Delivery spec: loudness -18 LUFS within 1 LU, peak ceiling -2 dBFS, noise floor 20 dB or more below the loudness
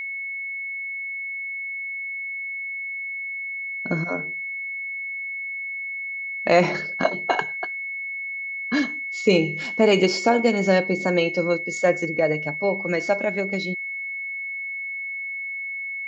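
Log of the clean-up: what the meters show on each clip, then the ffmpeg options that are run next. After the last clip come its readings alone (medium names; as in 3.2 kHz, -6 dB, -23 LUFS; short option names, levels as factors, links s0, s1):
steady tone 2.2 kHz; tone level -28 dBFS; loudness -24.5 LUFS; peak level -3.0 dBFS; loudness target -18.0 LUFS
-> -af "bandreject=f=2200:w=30"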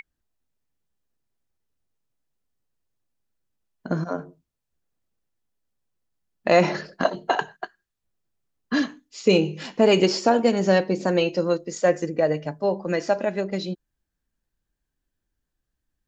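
steady tone not found; loudness -23.0 LUFS; peak level -4.0 dBFS; loudness target -18.0 LUFS
-> -af "volume=1.78,alimiter=limit=0.794:level=0:latency=1"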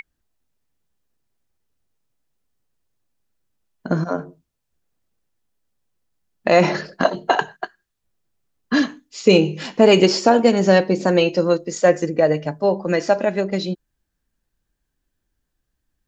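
loudness -18.0 LUFS; peak level -2.0 dBFS; noise floor -77 dBFS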